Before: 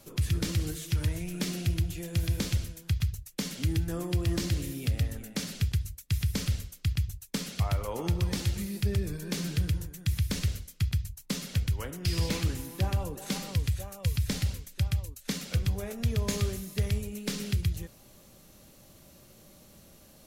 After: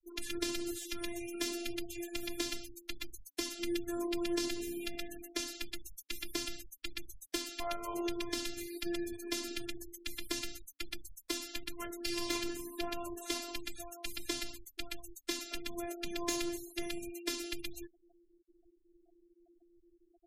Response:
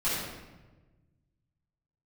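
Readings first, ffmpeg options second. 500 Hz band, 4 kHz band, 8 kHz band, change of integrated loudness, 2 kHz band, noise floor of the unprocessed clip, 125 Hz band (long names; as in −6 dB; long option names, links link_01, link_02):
−1.5 dB, −2.0 dB, −3.0 dB, −8.0 dB, −2.0 dB, −56 dBFS, −30.5 dB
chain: -filter_complex "[0:a]highpass=frequency=77:poles=1,afftfilt=real='hypot(re,im)*cos(PI*b)':imag='0':win_size=512:overlap=0.75,afftfilt=real='re*gte(hypot(re,im),0.00562)':imag='im*gte(hypot(re,im),0.00562)':win_size=1024:overlap=0.75,acrossover=split=160[link_01][link_02];[link_01]acompressor=threshold=-43dB:ratio=4[link_03];[link_03][link_02]amix=inputs=2:normalize=0,bandreject=frequency=282.8:width_type=h:width=4,bandreject=frequency=565.6:width_type=h:width=4,bandreject=frequency=848.4:width_type=h:width=4,volume=2dB"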